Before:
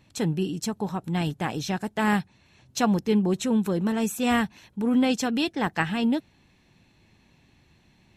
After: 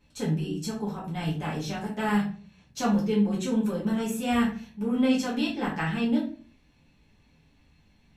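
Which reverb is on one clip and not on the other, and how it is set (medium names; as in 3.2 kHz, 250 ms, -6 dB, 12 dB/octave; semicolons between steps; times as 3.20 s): simulated room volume 30 m³, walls mixed, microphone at 1.2 m; trim -11 dB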